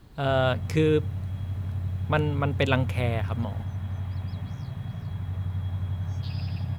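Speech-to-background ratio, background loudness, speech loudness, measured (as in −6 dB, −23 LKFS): 5.5 dB, −32.5 LKFS, −27.0 LKFS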